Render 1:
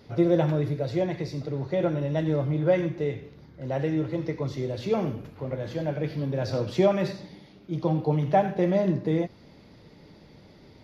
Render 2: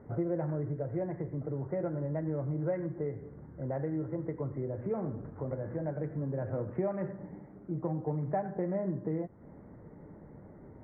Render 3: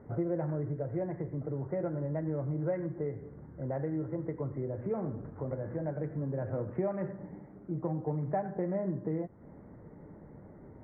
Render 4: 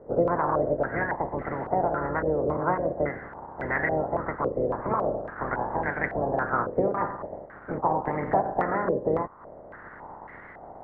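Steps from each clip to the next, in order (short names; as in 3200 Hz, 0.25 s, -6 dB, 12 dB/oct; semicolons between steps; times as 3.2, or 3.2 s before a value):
Wiener smoothing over 15 samples; compressor 2.5:1, threshold -36 dBFS, peak gain reduction 13.5 dB; steep low-pass 2000 Hz 48 dB/oct; gain +1 dB
nothing audible
spectral limiter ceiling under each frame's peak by 26 dB; in parallel at -4.5 dB: crossover distortion -54.5 dBFS; on the sum: stepped low-pass 3.6 Hz 500–2000 Hz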